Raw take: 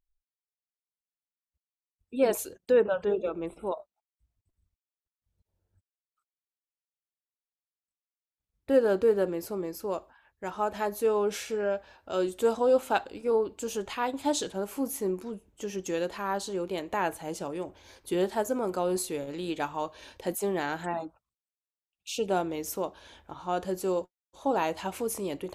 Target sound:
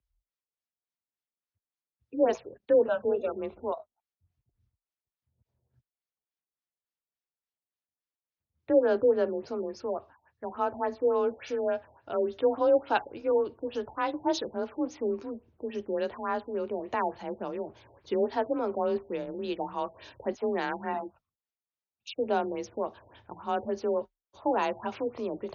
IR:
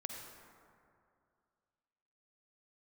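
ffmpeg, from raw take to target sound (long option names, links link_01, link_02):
-af "afreqshift=30,afftfilt=real='re*lt(b*sr/1024,890*pow(6900/890,0.5+0.5*sin(2*PI*3.5*pts/sr)))':imag='im*lt(b*sr/1024,890*pow(6900/890,0.5+0.5*sin(2*PI*3.5*pts/sr)))':win_size=1024:overlap=0.75"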